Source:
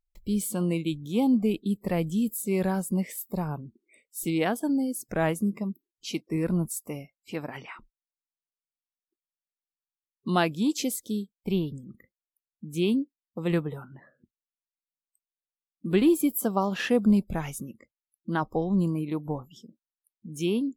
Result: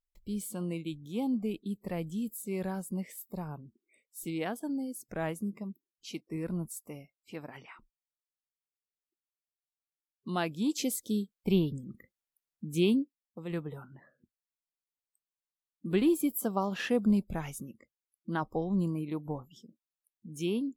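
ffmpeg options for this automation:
ffmpeg -i in.wav -af "volume=7.5dB,afade=type=in:start_time=10.37:duration=0.98:silence=0.354813,afade=type=out:start_time=12.71:duration=0.76:silence=0.237137,afade=type=in:start_time=13.47:duration=0.32:silence=0.446684" out.wav

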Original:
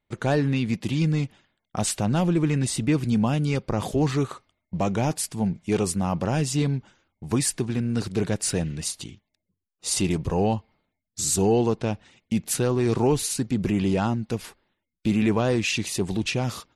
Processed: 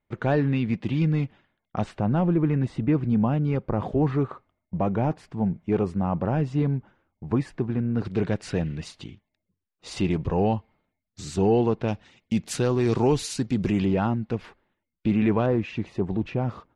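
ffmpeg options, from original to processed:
ffmpeg -i in.wav -af "asetnsamples=nb_out_samples=441:pad=0,asendcmd='1.84 lowpass f 1500;8.05 lowpass f 2800;11.88 lowpass f 5900;13.85 lowpass f 2400;15.46 lowpass f 1300',lowpass=2500" out.wav

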